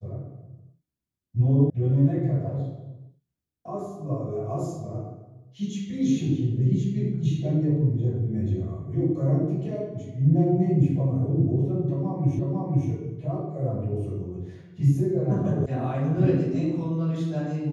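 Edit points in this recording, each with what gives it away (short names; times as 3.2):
1.7 sound cut off
12.39 repeat of the last 0.5 s
15.66 sound cut off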